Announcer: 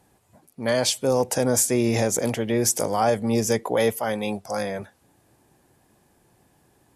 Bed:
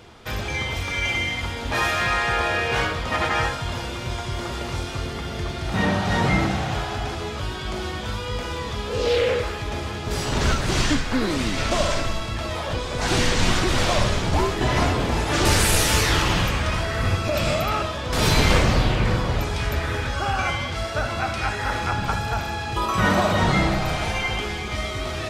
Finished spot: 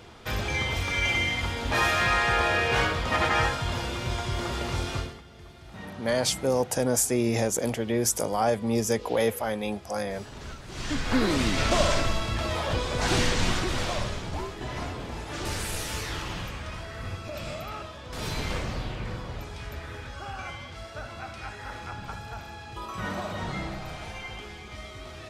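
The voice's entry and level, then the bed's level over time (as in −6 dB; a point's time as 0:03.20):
5.40 s, −3.5 dB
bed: 0:04.98 −1.5 dB
0:05.24 −19.5 dB
0:10.69 −19.5 dB
0:11.10 −1 dB
0:12.87 −1 dB
0:14.53 −13.5 dB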